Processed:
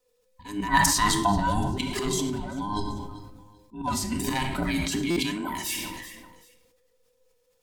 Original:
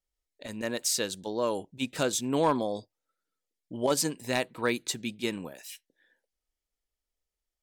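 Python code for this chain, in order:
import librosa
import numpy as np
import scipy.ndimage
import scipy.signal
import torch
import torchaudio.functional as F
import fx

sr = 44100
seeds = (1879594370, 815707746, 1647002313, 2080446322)

y = fx.band_invert(x, sr, width_hz=500)
y = fx.auto_swell(y, sr, attack_ms=322.0)
y = fx.spec_repair(y, sr, seeds[0], start_s=1.98, length_s=0.25, low_hz=340.0, high_hz=1100.0, source='after')
y = fx.highpass(y, sr, hz=250.0, slope=12, at=(5.09, 5.51))
y = fx.chorus_voices(y, sr, voices=2, hz=1.2, base_ms=12, depth_ms=3.4, mix_pct=20)
y = fx.over_compress(y, sr, threshold_db=-40.0, ratio=-1.0)
y = fx.band_shelf(y, sr, hz=1100.0, db=11.5, octaves=1.7, at=(0.68, 1.32))
y = fx.echo_feedback(y, sr, ms=389, feedback_pct=32, wet_db=-22.0)
y = fx.room_shoebox(y, sr, seeds[1], volume_m3=2600.0, walls='furnished', distance_m=1.9)
y = fx.buffer_glitch(y, sr, at_s=(5.1,), block=256, repeats=10)
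y = fx.sustainer(y, sr, db_per_s=35.0)
y = F.gain(torch.from_numpy(y), 9.0).numpy()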